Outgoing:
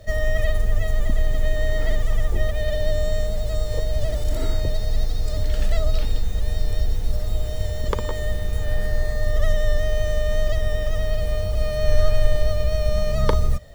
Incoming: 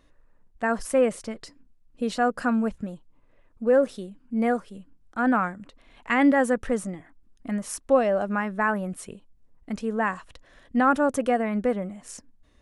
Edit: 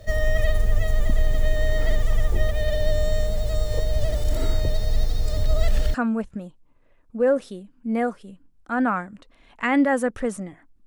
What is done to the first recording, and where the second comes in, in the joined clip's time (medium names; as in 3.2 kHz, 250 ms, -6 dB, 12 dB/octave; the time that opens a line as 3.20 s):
outgoing
5.46–5.94 s: reverse
5.94 s: go over to incoming from 2.41 s